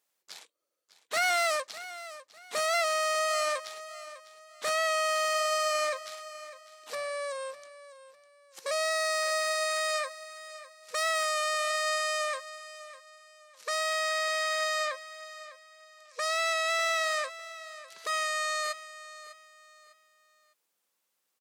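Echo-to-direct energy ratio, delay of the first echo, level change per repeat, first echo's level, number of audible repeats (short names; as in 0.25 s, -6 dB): -15.0 dB, 0.602 s, -10.0 dB, -15.5 dB, 2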